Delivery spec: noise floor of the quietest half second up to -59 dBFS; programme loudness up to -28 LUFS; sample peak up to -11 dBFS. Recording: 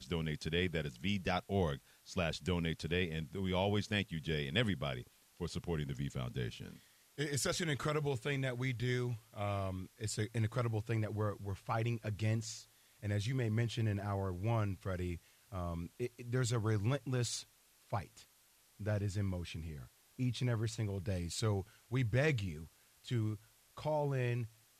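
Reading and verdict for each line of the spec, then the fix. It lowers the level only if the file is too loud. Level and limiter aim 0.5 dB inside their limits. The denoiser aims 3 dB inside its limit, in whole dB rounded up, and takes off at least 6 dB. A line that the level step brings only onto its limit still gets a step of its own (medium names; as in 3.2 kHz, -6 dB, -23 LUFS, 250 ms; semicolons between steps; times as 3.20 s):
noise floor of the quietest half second -69 dBFS: pass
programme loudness -38.0 LUFS: pass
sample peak -19.5 dBFS: pass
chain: none needed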